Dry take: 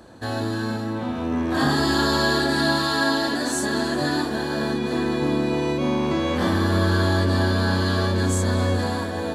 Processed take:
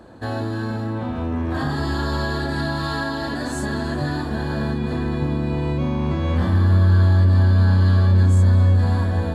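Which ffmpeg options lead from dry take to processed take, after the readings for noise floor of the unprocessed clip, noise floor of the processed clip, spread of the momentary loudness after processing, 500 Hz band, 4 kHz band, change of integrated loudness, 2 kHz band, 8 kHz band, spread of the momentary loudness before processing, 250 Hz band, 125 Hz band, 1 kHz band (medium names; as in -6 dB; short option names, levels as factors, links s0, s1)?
-28 dBFS, -26 dBFS, 11 LU, -4.0 dB, -8.0 dB, +2.5 dB, -4.5 dB, -9.5 dB, 6 LU, -1.5 dB, +8.5 dB, -3.5 dB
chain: -af "highshelf=f=2800:g=-9.5,acompressor=threshold=0.0708:ratio=6,bandreject=f=5900:w=14,asubboost=boost=6.5:cutoff=130,volume=1.33"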